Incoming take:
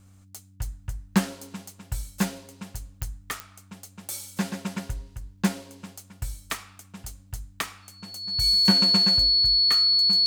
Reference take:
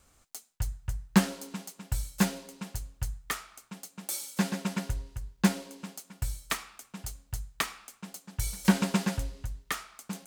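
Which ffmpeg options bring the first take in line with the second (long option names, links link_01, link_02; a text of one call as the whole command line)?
ffmpeg -i in.wav -af "adeclick=threshold=4,bandreject=frequency=95.7:width_type=h:width=4,bandreject=frequency=191.4:width_type=h:width=4,bandreject=frequency=287.1:width_type=h:width=4,bandreject=frequency=4400:width=30" out.wav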